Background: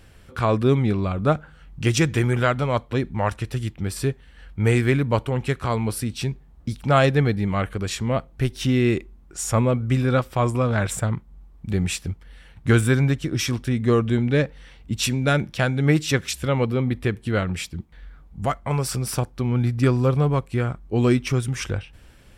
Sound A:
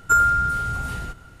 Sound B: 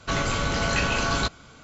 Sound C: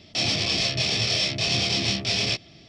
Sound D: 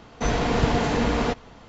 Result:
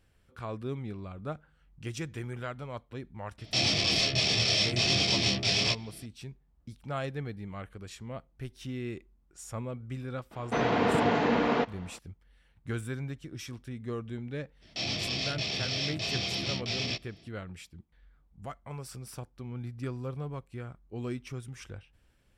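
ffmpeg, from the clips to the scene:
ffmpeg -i bed.wav -i cue0.wav -i cue1.wav -i cue2.wav -i cue3.wav -filter_complex "[3:a]asplit=2[link_01][link_02];[0:a]volume=-17.5dB[link_03];[4:a]highpass=190,lowpass=3200[link_04];[link_02]acrossover=split=6700[link_05][link_06];[link_06]acompressor=threshold=-51dB:ratio=4:attack=1:release=60[link_07];[link_05][link_07]amix=inputs=2:normalize=0[link_08];[link_01]atrim=end=2.68,asetpts=PTS-STARTPTS,volume=-2.5dB,afade=type=in:duration=0.004:curve=hsin,afade=type=out:start_time=2.676:duration=0.004:curve=hsin,adelay=3380[link_09];[link_04]atrim=end=1.68,asetpts=PTS-STARTPTS,volume=-1.5dB,afade=type=in:duration=0.004:curve=hsin,afade=type=out:start_time=1.676:duration=0.004:curve=hsin,adelay=10310[link_10];[link_08]atrim=end=2.68,asetpts=PTS-STARTPTS,volume=-8dB,afade=type=in:duration=0.02,afade=type=out:start_time=2.66:duration=0.02,adelay=14610[link_11];[link_03][link_09][link_10][link_11]amix=inputs=4:normalize=0" out.wav

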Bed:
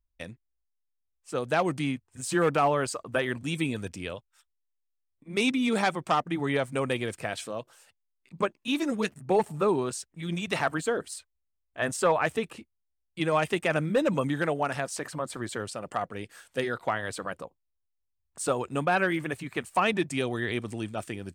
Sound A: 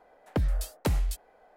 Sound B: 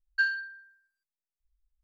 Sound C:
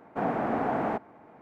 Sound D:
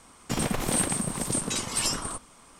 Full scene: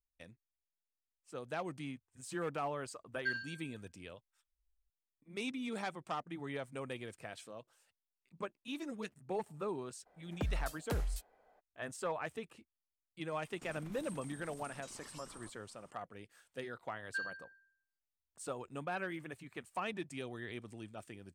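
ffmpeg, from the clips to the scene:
ffmpeg -i bed.wav -i cue0.wav -i cue1.wav -i cue2.wav -i cue3.wav -filter_complex "[2:a]asplit=2[link_01][link_02];[0:a]volume=-14.5dB[link_03];[link_01]aecho=1:1:56|78:0.562|0.596[link_04];[4:a]acompressor=threshold=-34dB:ratio=6:attack=3.2:release=140:knee=1:detection=peak[link_05];[link_04]atrim=end=1.83,asetpts=PTS-STARTPTS,volume=-10.5dB,afade=type=in:duration=0.004:curve=hsin,afade=type=out:start_time=1.826:duration=0.004:curve=hsin,adelay=3070[link_06];[1:a]atrim=end=1.56,asetpts=PTS-STARTPTS,volume=-9.5dB,afade=type=in:duration=0.02,afade=type=out:start_time=1.54:duration=0.02,adelay=10050[link_07];[link_05]atrim=end=2.59,asetpts=PTS-STARTPTS,volume=-16.5dB,afade=type=in:duration=0.004:curve=hsin,afade=type=out:start_time=2.586:duration=0.004:curve=hsin,adelay=587412S[link_08];[link_02]atrim=end=1.83,asetpts=PTS-STARTPTS,volume=-13dB,afade=type=in:duration=0.004:curve=hsin,afade=type=out:start_time=1.826:duration=0.004:curve=hsin,adelay=16960[link_09];[link_03][link_06][link_07][link_08][link_09]amix=inputs=5:normalize=0" out.wav

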